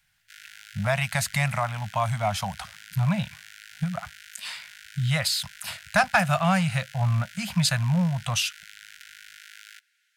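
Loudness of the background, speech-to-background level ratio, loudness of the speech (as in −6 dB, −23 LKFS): −45.5 LKFS, 19.5 dB, −26.0 LKFS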